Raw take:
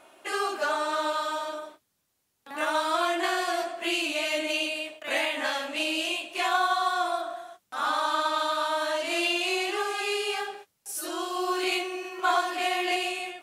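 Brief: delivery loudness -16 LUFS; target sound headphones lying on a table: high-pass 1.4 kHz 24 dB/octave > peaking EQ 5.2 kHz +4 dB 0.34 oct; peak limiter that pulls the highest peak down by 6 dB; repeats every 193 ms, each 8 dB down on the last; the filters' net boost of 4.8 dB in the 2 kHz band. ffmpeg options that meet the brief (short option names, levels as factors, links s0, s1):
-af "equalizer=f=2000:t=o:g=7.5,alimiter=limit=0.168:level=0:latency=1,highpass=f=1400:w=0.5412,highpass=f=1400:w=1.3066,equalizer=f=5200:t=o:w=0.34:g=4,aecho=1:1:193|386|579|772|965:0.398|0.159|0.0637|0.0255|0.0102,volume=3.35"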